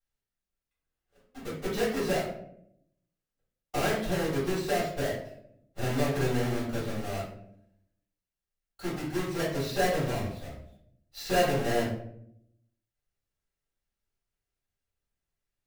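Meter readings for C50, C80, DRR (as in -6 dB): 3.5 dB, 7.5 dB, -10.0 dB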